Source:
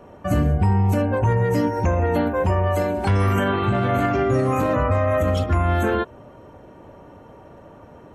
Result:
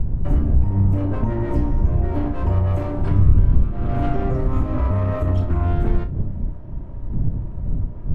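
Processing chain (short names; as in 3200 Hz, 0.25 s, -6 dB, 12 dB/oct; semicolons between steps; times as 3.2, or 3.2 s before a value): minimum comb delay 3.1 ms; wind noise 130 Hz -18 dBFS; tilt -3.5 dB/oct; compressor 3:1, threshold -10 dBFS, peak gain reduction 18 dB; on a send: flutter echo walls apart 5.4 m, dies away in 0.21 s; on the sum: gain -6 dB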